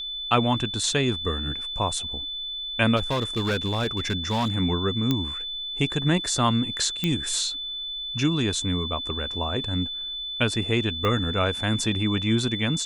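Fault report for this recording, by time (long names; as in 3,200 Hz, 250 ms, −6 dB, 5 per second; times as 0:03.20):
whistle 3,500 Hz −30 dBFS
0:02.96–0:04.56: clipping −20.5 dBFS
0:05.11: click −10 dBFS
0:07.04: click −11 dBFS
0:11.05: click −13 dBFS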